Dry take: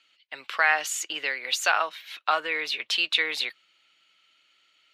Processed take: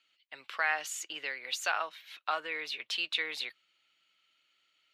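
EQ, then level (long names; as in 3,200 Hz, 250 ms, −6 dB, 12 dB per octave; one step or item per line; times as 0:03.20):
parametric band 120 Hz +3 dB 1.1 octaves
−8.5 dB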